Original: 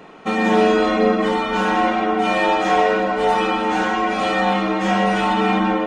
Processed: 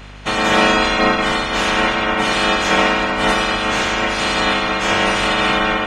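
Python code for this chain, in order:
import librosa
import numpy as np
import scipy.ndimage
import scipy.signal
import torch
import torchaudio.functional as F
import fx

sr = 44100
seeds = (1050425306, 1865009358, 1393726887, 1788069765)

y = fx.spec_clip(x, sr, under_db=21)
y = fx.add_hum(y, sr, base_hz=50, snr_db=21)
y = y * librosa.db_to_amplitude(1.5)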